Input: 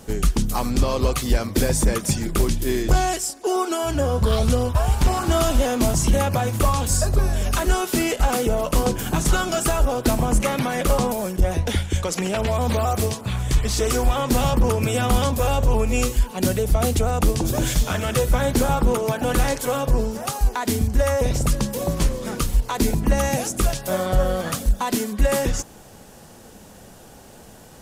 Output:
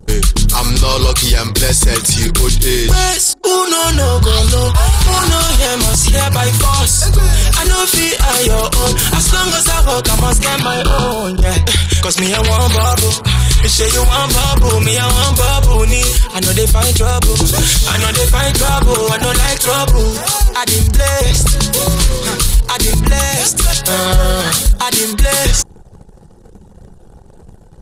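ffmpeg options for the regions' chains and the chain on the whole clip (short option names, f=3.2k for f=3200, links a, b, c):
-filter_complex "[0:a]asettb=1/sr,asplit=3[a][b][c];[a]atrim=end=10.624[d];[b]atrim=start=10.62:end=11.42,asetpts=PTS-STARTPTS,afade=t=in:d=0.004:c=qsin,afade=t=out:st=0.796:d=0.004:c=qsin,asoftclip=type=hard:threshold=-20dB,acrossover=split=3800[e][f];[f]acompressor=threshold=-47dB:ratio=4:attack=1:release=60[g];[e][g]amix=inputs=2:normalize=0,asuperstop=centerf=2000:order=12:qfactor=3.2[h];[c]atrim=start=11.416[i];[d][h]acrossfade=d=0.004:c1=hsin:c2=qsin[j];[j][i]acrossfade=d=0.004:c1=qsin:c2=hsin,anlmdn=0.398,equalizer=f=250:t=o:w=0.67:g=-11,equalizer=f=630:t=o:w=0.67:g=-9,equalizer=f=4k:t=o:w=0.67:g=9,equalizer=f=10k:t=o:w=0.67:g=8,alimiter=level_in=15.5dB:limit=-1dB:release=50:level=0:latency=1,volume=-1dB"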